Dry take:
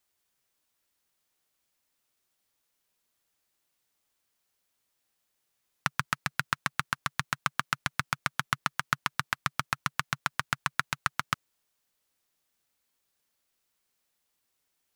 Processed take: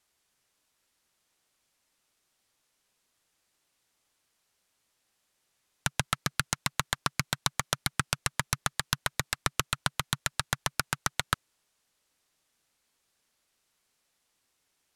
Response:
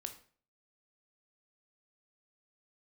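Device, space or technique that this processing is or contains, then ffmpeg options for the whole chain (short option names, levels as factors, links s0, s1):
overflowing digital effects unit: -af "aeval=exprs='(mod(5.96*val(0)+1,2)-1)/5.96':c=same,lowpass=11000,volume=1.78"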